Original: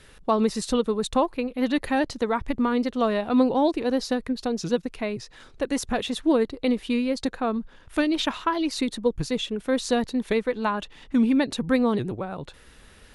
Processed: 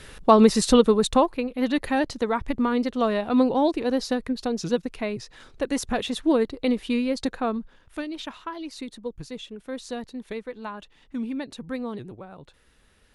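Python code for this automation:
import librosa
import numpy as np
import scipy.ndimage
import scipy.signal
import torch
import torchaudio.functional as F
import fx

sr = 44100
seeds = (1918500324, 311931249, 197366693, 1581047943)

y = fx.gain(x, sr, db=fx.line((0.86, 7.0), (1.43, 0.0), (7.46, 0.0), (8.07, -10.0)))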